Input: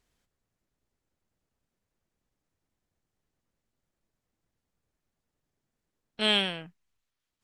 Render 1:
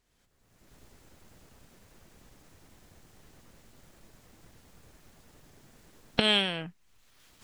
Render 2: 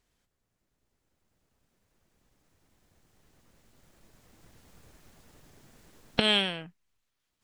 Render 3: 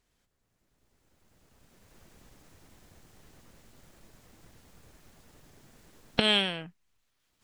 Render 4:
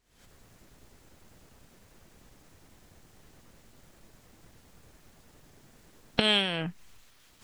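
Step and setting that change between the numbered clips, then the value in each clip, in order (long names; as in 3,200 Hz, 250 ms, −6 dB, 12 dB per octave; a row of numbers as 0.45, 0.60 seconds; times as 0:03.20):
camcorder AGC, rising by: 35, 5.5, 13, 88 dB per second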